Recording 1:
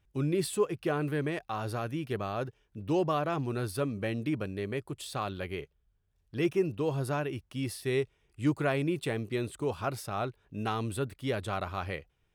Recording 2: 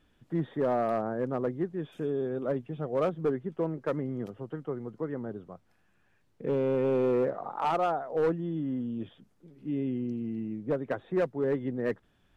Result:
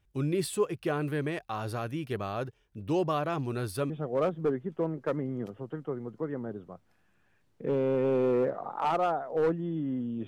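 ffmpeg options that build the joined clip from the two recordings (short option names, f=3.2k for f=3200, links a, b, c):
-filter_complex "[0:a]apad=whole_dur=10.27,atrim=end=10.27,atrim=end=3.902[a];[1:a]atrim=start=2.698:end=9.07[b];[a][b]acrossfade=d=0.004:c1=hsin:c2=hsin"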